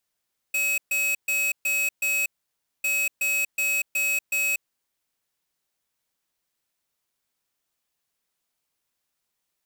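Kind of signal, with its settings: beep pattern square 2.56 kHz, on 0.24 s, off 0.13 s, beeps 5, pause 0.58 s, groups 2, -24 dBFS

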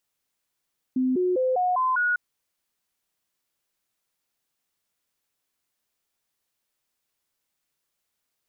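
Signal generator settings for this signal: stepped sine 257 Hz up, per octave 2, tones 6, 0.20 s, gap 0.00 s -20 dBFS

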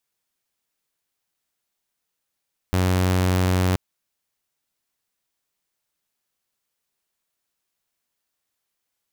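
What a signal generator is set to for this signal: tone saw 91.9 Hz -15 dBFS 1.03 s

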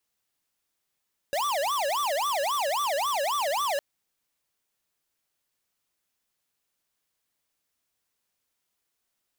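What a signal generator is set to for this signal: siren wail 550–1180 Hz 3.7 per s square -27 dBFS 2.46 s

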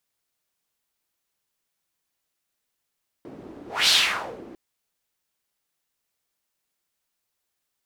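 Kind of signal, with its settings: whoosh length 1.30 s, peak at 0.64 s, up 0.24 s, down 0.58 s, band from 340 Hz, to 4 kHz, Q 2.4, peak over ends 24 dB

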